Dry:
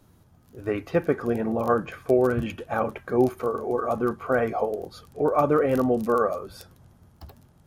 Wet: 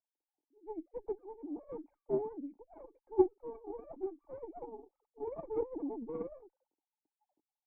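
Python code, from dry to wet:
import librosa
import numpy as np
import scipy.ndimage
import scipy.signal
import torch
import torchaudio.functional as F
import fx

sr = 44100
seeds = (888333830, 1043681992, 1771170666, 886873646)

y = fx.sine_speech(x, sr)
y = fx.cheby_harmonics(y, sr, harmonics=(3, 6, 8), levels_db=(-12, -23, -21), full_scale_db=-8.0)
y = fx.formant_cascade(y, sr, vowel='u')
y = F.gain(torch.from_numpy(y), 4.0).numpy()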